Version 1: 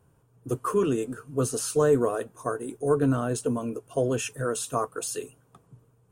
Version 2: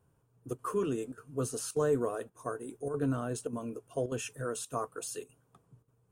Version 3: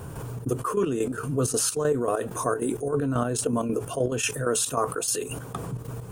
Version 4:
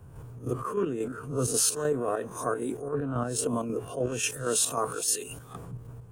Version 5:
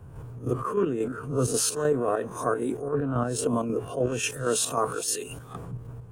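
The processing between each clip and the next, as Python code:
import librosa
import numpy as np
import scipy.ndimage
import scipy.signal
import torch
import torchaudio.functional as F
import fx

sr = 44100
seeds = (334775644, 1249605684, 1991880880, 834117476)

y1 = fx.chopper(x, sr, hz=1.7, depth_pct=65, duty_pct=90)
y1 = F.gain(torch.from_numpy(y1), -7.5).numpy()
y2 = fx.step_gate(y1, sr, bpm=195, pattern='..xxx.xx..x..x', floor_db=-12.0, edge_ms=4.5)
y2 = fx.env_flatten(y2, sr, amount_pct=70)
y2 = F.gain(torch.from_numpy(y2), 4.5).numpy()
y3 = fx.spec_swells(y2, sr, rise_s=0.36)
y3 = fx.band_widen(y3, sr, depth_pct=70)
y3 = F.gain(torch.from_numpy(y3), -5.0).numpy()
y4 = fx.high_shelf(y3, sr, hz=4600.0, db=-6.5)
y4 = F.gain(torch.from_numpy(y4), 3.5).numpy()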